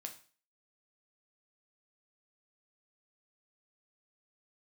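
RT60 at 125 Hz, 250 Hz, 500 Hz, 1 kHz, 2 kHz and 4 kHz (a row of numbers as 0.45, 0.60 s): 0.40, 0.40, 0.40, 0.40, 0.40, 0.40 s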